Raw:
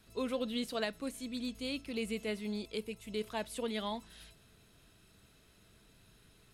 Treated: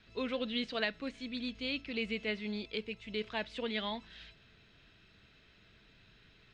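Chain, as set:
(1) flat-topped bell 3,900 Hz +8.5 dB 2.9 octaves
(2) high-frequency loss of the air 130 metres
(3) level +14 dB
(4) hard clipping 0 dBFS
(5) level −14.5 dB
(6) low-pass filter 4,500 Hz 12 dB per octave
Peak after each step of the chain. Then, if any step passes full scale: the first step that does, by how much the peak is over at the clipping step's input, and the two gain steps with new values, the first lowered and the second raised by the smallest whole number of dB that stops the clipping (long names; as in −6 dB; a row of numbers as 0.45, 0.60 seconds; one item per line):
−14.5, −16.5, −2.5, −2.5, −17.0, −17.5 dBFS
no step passes full scale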